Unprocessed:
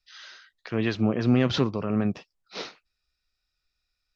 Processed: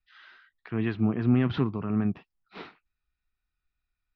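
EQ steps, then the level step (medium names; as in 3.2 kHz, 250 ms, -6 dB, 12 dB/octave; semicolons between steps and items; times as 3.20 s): distance through air 480 m; peaking EQ 540 Hz -12.5 dB 0.51 oct; 0.0 dB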